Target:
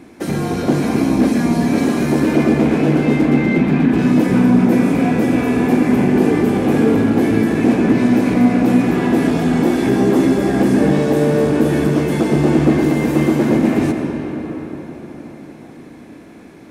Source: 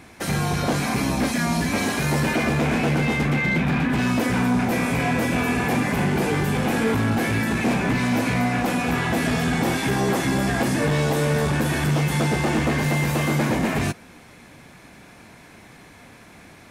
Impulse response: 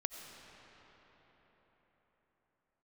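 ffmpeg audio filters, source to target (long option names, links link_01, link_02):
-filter_complex "[0:a]equalizer=frequency=310:width=0.86:gain=15[link_01];[1:a]atrim=start_sample=2205[link_02];[link_01][link_02]afir=irnorm=-1:irlink=0,volume=-2dB"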